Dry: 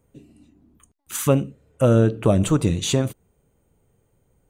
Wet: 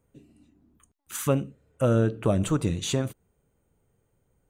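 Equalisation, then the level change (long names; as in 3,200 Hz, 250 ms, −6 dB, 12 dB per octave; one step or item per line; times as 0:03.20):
parametric band 1,500 Hz +3 dB
−6.0 dB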